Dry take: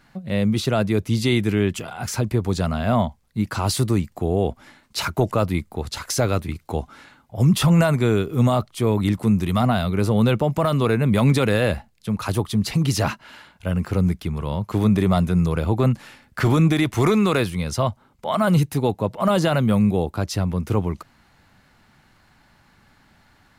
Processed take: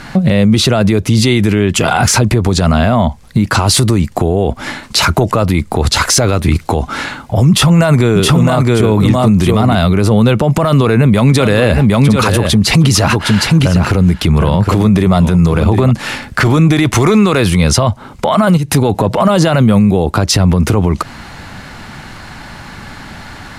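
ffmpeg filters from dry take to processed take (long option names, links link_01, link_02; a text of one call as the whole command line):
ffmpeg -i in.wav -filter_complex "[0:a]asettb=1/sr,asplit=3[link_01][link_02][link_03];[link_01]atrim=end=7.494[link_04];[link_02]atrim=start=7.49:end=9.75,asetpts=PTS-STARTPTS,afade=type=in:duration=0.004:curve=qsin,afade=type=out:start_time=2.256:duration=0.004:curve=qsin,aecho=1:1:667:0.668,atrim=end_sample=99666[link_05];[link_03]atrim=start=9.746[link_06];[link_04][link_05]acrossfade=duration=0.004:curve1=hsin:curve2=qsin[link_07];[link_07][link_06]acrossfade=duration=0.004:curve1=qsin:curve2=hsin,asettb=1/sr,asplit=3[link_08][link_09][link_10];[link_08]atrim=end=10.634[link_11];[link_09]atrim=start=10.63:end=15.91,asetpts=PTS-STARTPTS,afade=type=in:duration=0.004:curve=qsin,afade=type=out:start_time=5.276:duration=0.004:curve=qsin,aecho=1:1:760:0.266,atrim=end_sample=232848[link_12];[link_10]atrim=start=15.906[link_13];[link_11][link_12]acrossfade=duration=0.004:curve1=hsin:curve2=qsin[link_14];[link_14][link_13]acrossfade=duration=0.004:curve1=qsin:curve2=hsin,asplit=3[link_15][link_16][link_17];[link_15]afade=type=out:start_time=18.56:duration=0.02[link_18];[link_16]acompressor=threshold=-27dB:ratio=16:attack=3.2:release=140:knee=1:detection=peak,afade=type=in:start_time=18.56:duration=0.02,afade=type=out:start_time=19.05:duration=0.02[link_19];[link_17]afade=type=in:start_time=19.05:duration=0.02[link_20];[link_18][link_19][link_20]amix=inputs=3:normalize=0,lowpass=11000,acompressor=threshold=-27dB:ratio=5,alimiter=level_in=27dB:limit=-1dB:release=50:level=0:latency=1,volume=-1dB" out.wav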